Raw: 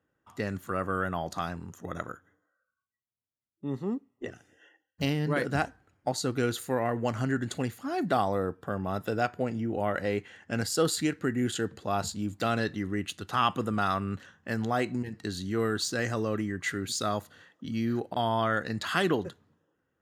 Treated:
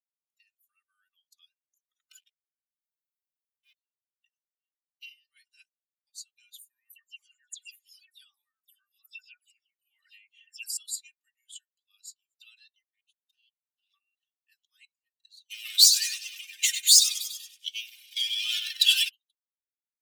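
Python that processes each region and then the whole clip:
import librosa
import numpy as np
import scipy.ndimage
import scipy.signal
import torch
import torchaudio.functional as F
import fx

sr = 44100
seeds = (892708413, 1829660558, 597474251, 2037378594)

y = fx.chain(x, sr, fx.peak_eq(hz=160.0, db=14.0, octaves=0.48),
    fx.leveller(passes=5),
    fx.env_flatten(amount_pct=50), at=(2.11, 3.73))
y = fx.chain(y, sr, fx.dispersion(late='lows', ms=139.0, hz=2800.0),
    fx.env_flatten(amount_pct=50), at=(6.89, 10.77))
y = fx.chain(y, sr, fx.ellip_highpass(hz=1500.0, order=4, stop_db=50),
    fx.level_steps(step_db=23),
    fx.doppler_dist(depth_ms=0.71), at=(12.82, 13.94))
y = fx.chain(y, sr, fx.echo_feedback(ms=96, feedback_pct=55, wet_db=-6.0),
    fx.leveller(passes=5),
    fx.band_squash(depth_pct=40), at=(15.5, 19.09))
y = fx.bin_expand(y, sr, power=2.0)
y = scipy.signal.sosfilt(scipy.signal.butter(6, 2900.0, 'highpass', fs=sr, output='sos'), y)
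y = y + 0.88 * np.pad(y, (int(3.3 * sr / 1000.0), 0))[:len(y)]
y = y * librosa.db_to_amplitude(5.0)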